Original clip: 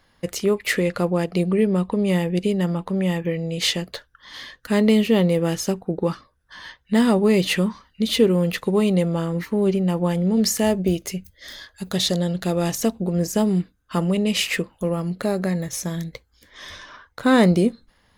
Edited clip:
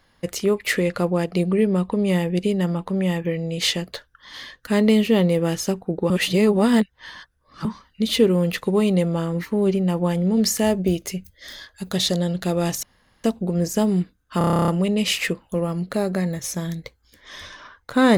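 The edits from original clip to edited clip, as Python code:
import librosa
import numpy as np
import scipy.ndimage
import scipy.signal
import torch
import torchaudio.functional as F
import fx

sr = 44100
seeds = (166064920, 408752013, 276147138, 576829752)

y = fx.edit(x, sr, fx.reverse_span(start_s=6.1, length_s=1.55),
    fx.insert_room_tone(at_s=12.83, length_s=0.41),
    fx.stutter(start_s=13.97, slice_s=0.03, count=11), tone=tone)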